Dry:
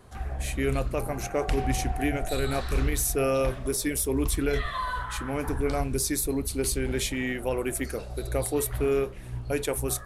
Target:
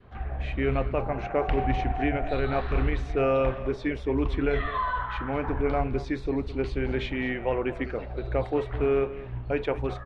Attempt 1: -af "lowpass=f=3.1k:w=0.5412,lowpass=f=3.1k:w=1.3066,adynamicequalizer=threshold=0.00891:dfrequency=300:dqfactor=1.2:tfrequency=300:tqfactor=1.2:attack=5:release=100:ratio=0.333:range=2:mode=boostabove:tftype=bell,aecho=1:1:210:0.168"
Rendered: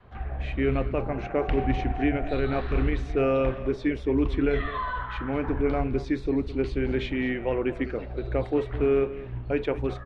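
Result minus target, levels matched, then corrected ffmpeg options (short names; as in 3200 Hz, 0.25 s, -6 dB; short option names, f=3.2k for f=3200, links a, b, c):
1000 Hz band -3.5 dB
-af "lowpass=f=3.1k:w=0.5412,lowpass=f=3.1k:w=1.3066,adynamicequalizer=threshold=0.00891:dfrequency=830:dqfactor=1.2:tfrequency=830:tqfactor=1.2:attack=5:release=100:ratio=0.333:range=2:mode=boostabove:tftype=bell,aecho=1:1:210:0.168"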